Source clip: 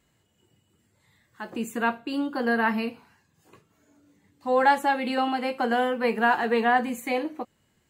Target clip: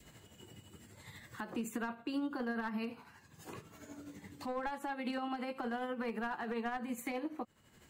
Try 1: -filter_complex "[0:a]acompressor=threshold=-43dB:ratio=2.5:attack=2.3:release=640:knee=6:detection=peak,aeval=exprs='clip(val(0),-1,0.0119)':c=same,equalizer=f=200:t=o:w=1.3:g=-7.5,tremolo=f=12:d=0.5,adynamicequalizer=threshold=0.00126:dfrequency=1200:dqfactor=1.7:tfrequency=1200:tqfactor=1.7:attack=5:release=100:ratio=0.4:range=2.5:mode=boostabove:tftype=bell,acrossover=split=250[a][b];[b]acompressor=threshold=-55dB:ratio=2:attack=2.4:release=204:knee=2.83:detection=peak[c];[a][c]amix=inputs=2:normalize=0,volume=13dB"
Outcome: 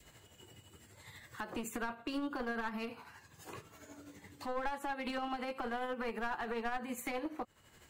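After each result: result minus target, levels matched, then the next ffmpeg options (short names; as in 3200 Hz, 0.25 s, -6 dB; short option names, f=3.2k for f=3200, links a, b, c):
compressor: peak gain reduction -4 dB; 250 Hz band -3.0 dB
-filter_complex "[0:a]acompressor=threshold=-49.5dB:ratio=2.5:attack=2.3:release=640:knee=6:detection=peak,aeval=exprs='clip(val(0),-1,0.0119)':c=same,equalizer=f=200:t=o:w=1.3:g=-7.5,tremolo=f=12:d=0.5,adynamicequalizer=threshold=0.00126:dfrequency=1200:dqfactor=1.7:tfrequency=1200:tqfactor=1.7:attack=5:release=100:ratio=0.4:range=2.5:mode=boostabove:tftype=bell,acrossover=split=250[a][b];[b]acompressor=threshold=-55dB:ratio=2:attack=2.4:release=204:knee=2.83:detection=peak[c];[a][c]amix=inputs=2:normalize=0,volume=13dB"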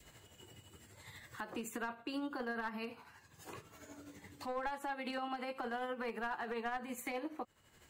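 250 Hz band -3.5 dB
-filter_complex "[0:a]acompressor=threshold=-49.5dB:ratio=2.5:attack=2.3:release=640:knee=6:detection=peak,aeval=exprs='clip(val(0),-1,0.0119)':c=same,tremolo=f=12:d=0.5,adynamicequalizer=threshold=0.00126:dfrequency=1200:dqfactor=1.7:tfrequency=1200:tqfactor=1.7:attack=5:release=100:ratio=0.4:range=2.5:mode=boostabove:tftype=bell,acrossover=split=250[a][b];[b]acompressor=threshold=-55dB:ratio=2:attack=2.4:release=204:knee=2.83:detection=peak[c];[a][c]amix=inputs=2:normalize=0,volume=13dB"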